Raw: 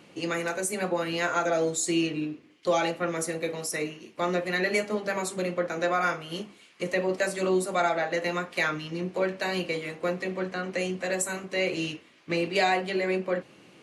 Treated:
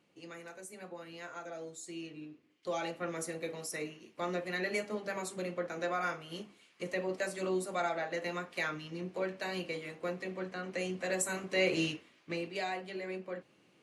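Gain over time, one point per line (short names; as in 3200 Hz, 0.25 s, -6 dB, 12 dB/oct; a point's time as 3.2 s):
1.93 s -18.5 dB
3.08 s -8.5 dB
10.56 s -8.5 dB
11.8 s -1 dB
12.56 s -13 dB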